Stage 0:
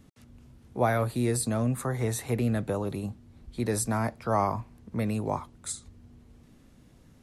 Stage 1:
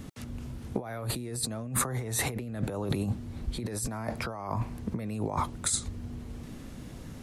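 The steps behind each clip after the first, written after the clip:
compressor whose output falls as the input rises −38 dBFS, ratio −1
level +5 dB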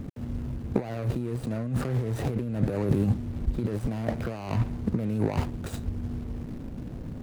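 running median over 41 samples
level +6.5 dB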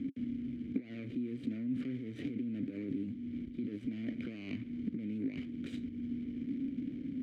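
downward compressor 6 to 1, threshold −31 dBFS, peak gain reduction 13 dB
formant filter i
level +9 dB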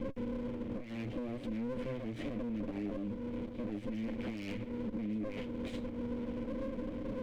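lower of the sound and its delayed copy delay 9.5 ms
brickwall limiter −34 dBFS, peak gain reduction 11 dB
level +4 dB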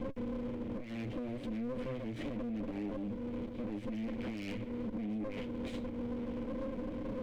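soft clipping −33 dBFS, distortion −18 dB
level +1.5 dB

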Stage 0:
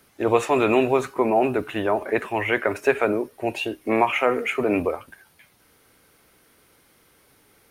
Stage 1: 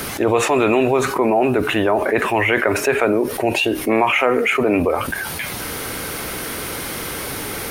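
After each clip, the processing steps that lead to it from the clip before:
envelope flattener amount 70%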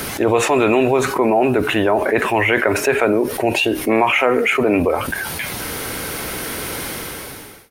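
fade-out on the ending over 0.86 s
notch filter 1,200 Hz, Q 21
level +1 dB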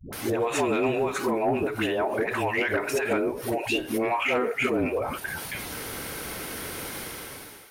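all-pass dispersion highs, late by 128 ms, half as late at 400 Hz
soft clipping −5 dBFS, distortion −24 dB
level −9 dB

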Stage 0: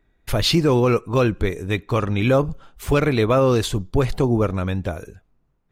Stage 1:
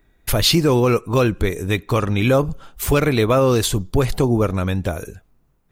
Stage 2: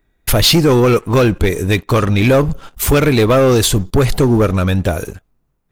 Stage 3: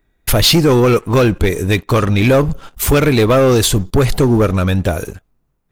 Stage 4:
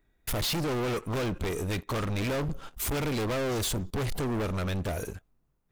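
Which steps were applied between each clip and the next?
high-shelf EQ 7,600 Hz +11.5 dB; in parallel at 0 dB: downward compressor, threshold −25 dBFS, peak gain reduction 12 dB; on the sum: level −1 dB
leveller curve on the samples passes 2
no processing that can be heard
soft clipping −20.5 dBFS, distortion −7 dB; level −7.5 dB

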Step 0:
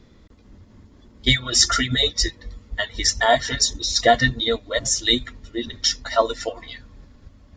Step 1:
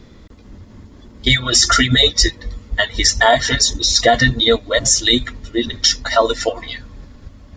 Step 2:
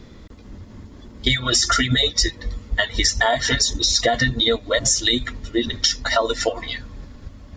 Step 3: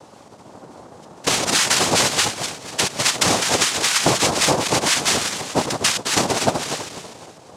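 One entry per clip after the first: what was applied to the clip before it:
boost into a limiter +9.5 dB; level −1 dB
downward compressor, threshold −15 dBFS, peak gain reduction 8 dB
feedback delay that plays each chunk backwards 123 ms, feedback 62%, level −6.5 dB; cochlear-implant simulation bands 2

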